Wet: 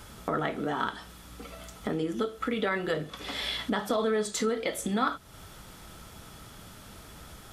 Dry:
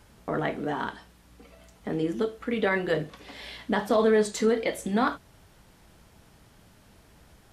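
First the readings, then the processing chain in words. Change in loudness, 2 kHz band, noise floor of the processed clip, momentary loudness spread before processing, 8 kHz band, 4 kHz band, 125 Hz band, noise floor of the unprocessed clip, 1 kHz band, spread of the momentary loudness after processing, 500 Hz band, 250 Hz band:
-3.5 dB, -2.5 dB, -49 dBFS, 17 LU, +2.5 dB, +4.0 dB, -2.5 dB, -57 dBFS, -1.0 dB, 19 LU, -5.0 dB, -3.5 dB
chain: treble shelf 4.6 kHz +5.5 dB; compression 2.5:1, threshold -39 dBFS, peak gain reduction 13.5 dB; small resonant body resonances 1.3/3.4 kHz, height 11 dB, ringing for 30 ms; trim +7 dB

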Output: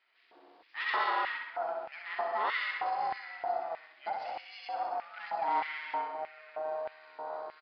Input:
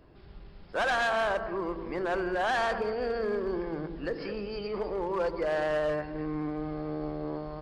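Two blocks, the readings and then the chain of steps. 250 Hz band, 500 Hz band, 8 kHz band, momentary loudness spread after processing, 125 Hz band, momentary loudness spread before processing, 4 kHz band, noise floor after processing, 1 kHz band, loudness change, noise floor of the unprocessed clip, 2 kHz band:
-22.0 dB, -10.0 dB, no reading, 11 LU, under -25 dB, 8 LU, -3.0 dB, -66 dBFS, +1.0 dB, -4.0 dB, -50 dBFS, -3.0 dB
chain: ring modulator 320 Hz; on a send: feedback delay 64 ms, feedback 52%, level -4 dB; on the sum: LFO high-pass square 1.6 Hz 730–2100 Hz; resampled via 11.025 kHz; trim -4 dB

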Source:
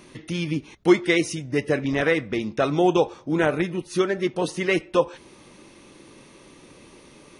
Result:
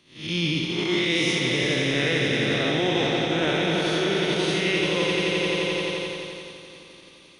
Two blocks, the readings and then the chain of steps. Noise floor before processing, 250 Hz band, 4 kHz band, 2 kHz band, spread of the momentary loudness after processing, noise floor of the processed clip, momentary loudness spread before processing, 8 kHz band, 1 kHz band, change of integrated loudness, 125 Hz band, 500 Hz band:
-50 dBFS, -1.5 dB, +11.0 dB, +3.5 dB, 8 LU, -50 dBFS, 7 LU, +3.5 dB, -2.0 dB, +0.5 dB, +2.0 dB, -2.0 dB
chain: spectral blur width 235 ms; peaking EQ 3.6 kHz +14.5 dB 1.3 oct; on a send: echo with a slow build-up 87 ms, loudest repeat 5, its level -9 dB; on the sum: reverse; compression, threshold -24 dBFS, peak gain reduction 7.5 dB; reverse; expander -26 dBFS; three bands compressed up and down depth 40%; trim +5 dB

